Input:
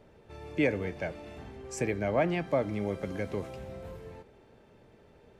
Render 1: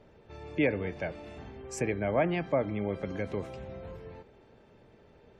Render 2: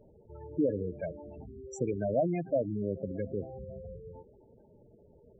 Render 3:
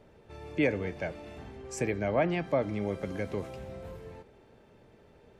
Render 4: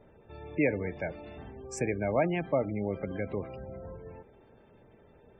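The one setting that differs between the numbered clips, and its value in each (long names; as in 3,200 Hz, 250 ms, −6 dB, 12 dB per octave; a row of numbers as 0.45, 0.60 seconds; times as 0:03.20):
gate on every frequency bin, under each frame's peak: −40, −10, −55, −25 decibels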